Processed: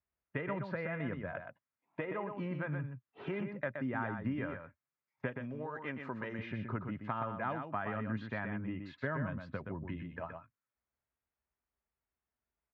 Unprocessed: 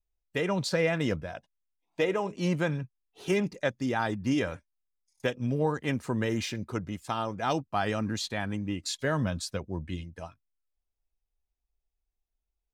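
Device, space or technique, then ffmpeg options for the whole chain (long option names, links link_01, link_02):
bass amplifier: -filter_complex "[0:a]acompressor=threshold=-39dB:ratio=5,highpass=frequency=86:width=0.5412,highpass=frequency=86:width=1.3066,equalizer=frequency=88:width_type=q:width=4:gain=-7,equalizer=frequency=180:width_type=q:width=4:gain=-6,equalizer=frequency=330:width_type=q:width=4:gain=-7,equalizer=frequency=470:width_type=q:width=4:gain=-7,equalizer=frequency=760:width_type=q:width=4:gain=-7,lowpass=frequency=2000:width=0.5412,lowpass=frequency=2000:width=1.3066,asettb=1/sr,asplit=3[link_01][link_02][link_03];[link_01]atrim=end=5.364[link_04];[link_02]atrim=start=5.36:end=6.39,asetpts=PTS-STARTPTS,afade=type=in:duration=0.004:curve=qsin,afade=type=out:start_time=1.026:duration=0.004:curve=qsin,bass=frequency=250:gain=-10,treble=frequency=4000:gain=14[link_05];[link_03]atrim=start=6.386[link_06];[link_04][link_05]acrossfade=duration=0.004:curve1=hsin:curve2=qsin[link_07];[link_07][link_06]acrossfade=duration=0.004:curve1=qsin:curve2=hsin,aecho=1:1:123:0.473,volume=7dB"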